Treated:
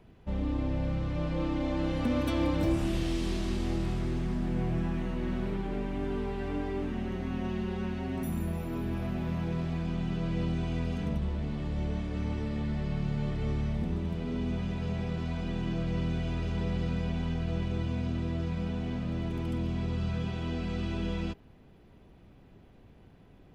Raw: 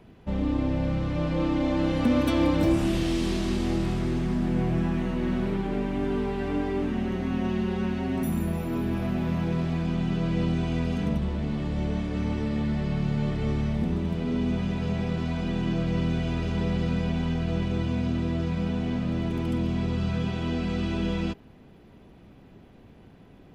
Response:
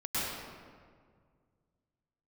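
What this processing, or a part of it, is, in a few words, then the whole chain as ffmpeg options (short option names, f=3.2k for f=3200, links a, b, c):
low shelf boost with a cut just above: -af "lowshelf=f=85:g=6,equalizer=f=230:t=o:w=0.85:g=-2.5,volume=-5.5dB"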